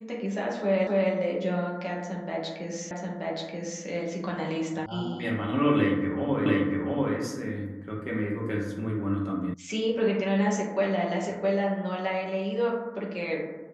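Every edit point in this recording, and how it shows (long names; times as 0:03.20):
0:00.87: the same again, the last 0.26 s
0:02.91: the same again, the last 0.93 s
0:04.86: cut off before it has died away
0:06.46: the same again, the last 0.69 s
0:09.54: cut off before it has died away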